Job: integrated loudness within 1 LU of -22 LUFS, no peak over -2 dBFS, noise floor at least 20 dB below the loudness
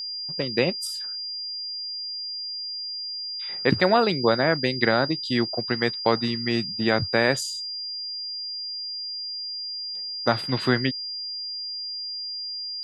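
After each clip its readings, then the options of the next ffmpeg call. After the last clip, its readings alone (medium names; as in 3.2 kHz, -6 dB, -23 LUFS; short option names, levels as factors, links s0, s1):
steady tone 4.8 kHz; tone level -30 dBFS; loudness -25.5 LUFS; peak level -4.0 dBFS; loudness target -22.0 LUFS
-> -af "bandreject=f=4800:w=30"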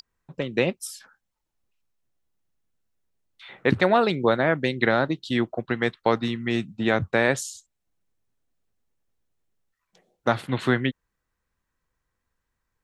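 steady tone not found; loudness -24.0 LUFS; peak level -4.5 dBFS; loudness target -22.0 LUFS
-> -af "volume=1.26"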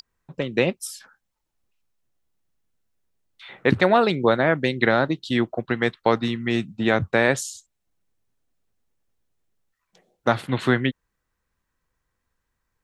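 loudness -22.0 LUFS; peak level -2.5 dBFS; noise floor -79 dBFS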